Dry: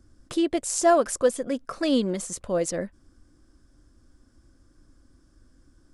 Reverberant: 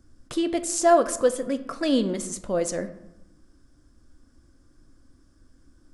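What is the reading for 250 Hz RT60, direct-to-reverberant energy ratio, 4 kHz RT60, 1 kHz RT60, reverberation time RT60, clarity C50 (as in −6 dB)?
1.1 s, 10.0 dB, 0.55 s, 0.95 s, 0.90 s, 13.5 dB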